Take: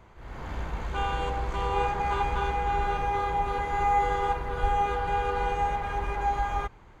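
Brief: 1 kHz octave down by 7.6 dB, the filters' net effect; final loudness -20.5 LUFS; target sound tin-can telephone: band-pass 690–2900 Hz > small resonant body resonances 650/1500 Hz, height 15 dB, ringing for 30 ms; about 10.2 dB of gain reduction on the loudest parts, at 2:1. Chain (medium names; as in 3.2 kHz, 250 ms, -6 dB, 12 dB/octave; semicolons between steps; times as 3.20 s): peaking EQ 1 kHz -8 dB; compression 2:1, threshold -40 dBFS; band-pass 690–2900 Hz; small resonant body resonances 650/1500 Hz, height 15 dB, ringing for 30 ms; trim +18.5 dB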